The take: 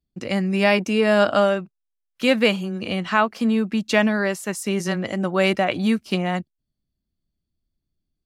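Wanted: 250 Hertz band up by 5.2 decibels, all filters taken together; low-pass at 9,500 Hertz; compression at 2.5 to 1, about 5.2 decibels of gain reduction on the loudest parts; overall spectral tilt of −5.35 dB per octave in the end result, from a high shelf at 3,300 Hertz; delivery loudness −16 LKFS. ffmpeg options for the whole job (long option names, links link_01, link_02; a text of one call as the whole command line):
ffmpeg -i in.wav -af "lowpass=9500,equalizer=frequency=250:width_type=o:gain=6.5,highshelf=frequency=3300:gain=5.5,acompressor=threshold=-18dB:ratio=2.5,volume=6dB" out.wav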